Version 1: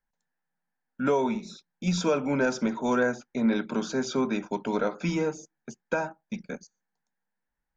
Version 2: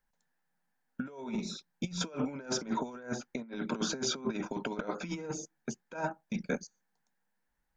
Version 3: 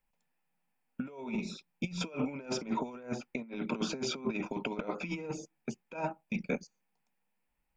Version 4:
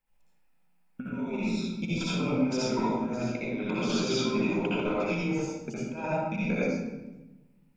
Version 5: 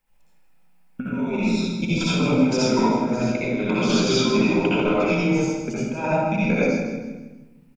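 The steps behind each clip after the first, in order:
negative-ratio compressor -32 dBFS, ratio -0.5; gain -2.5 dB
thirty-one-band EQ 1600 Hz -10 dB, 2500 Hz +10 dB, 4000 Hz -6 dB, 6300 Hz -9 dB
reverb RT60 1.1 s, pre-delay 60 ms, DRR -8 dB; gain -2 dB
feedback echo 0.16 s, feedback 37%, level -10 dB; gain +8 dB

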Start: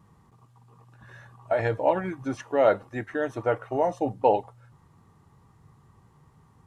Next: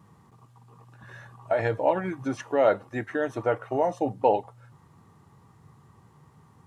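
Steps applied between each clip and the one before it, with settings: HPF 87 Hz; in parallel at -2.5 dB: compressor, threshold -31 dBFS, peak gain reduction 15.5 dB; on the sum: gain -2 dB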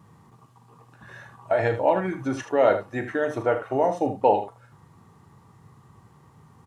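early reflections 38 ms -10.5 dB, 78 ms -11 dB; gain +2 dB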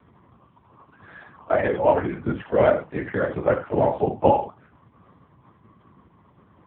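LPC vocoder at 8 kHz whisper; gain +3.5 dB; AMR-NB 6.7 kbps 8000 Hz

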